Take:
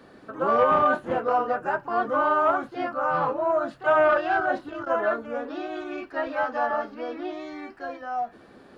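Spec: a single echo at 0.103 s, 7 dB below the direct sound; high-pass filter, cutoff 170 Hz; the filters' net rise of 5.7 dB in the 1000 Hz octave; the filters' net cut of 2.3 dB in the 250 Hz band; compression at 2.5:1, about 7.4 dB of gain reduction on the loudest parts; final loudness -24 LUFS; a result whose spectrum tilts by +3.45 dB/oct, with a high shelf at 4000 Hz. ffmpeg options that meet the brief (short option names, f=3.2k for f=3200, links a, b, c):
-af "highpass=170,equalizer=f=250:t=o:g=-3,equalizer=f=1k:t=o:g=7,highshelf=f=4k:g=8.5,acompressor=threshold=-23dB:ratio=2.5,aecho=1:1:103:0.447,volume=1.5dB"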